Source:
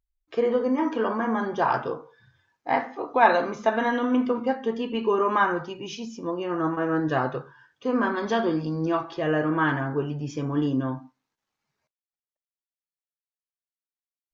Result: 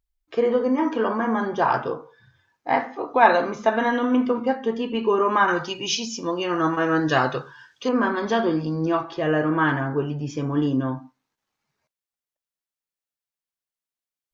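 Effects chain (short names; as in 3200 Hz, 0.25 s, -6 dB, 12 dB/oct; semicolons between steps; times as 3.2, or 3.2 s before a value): 5.48–7.89 bell 5200 Hz +13.5 dB 2.6 oct; gain +2.5 dB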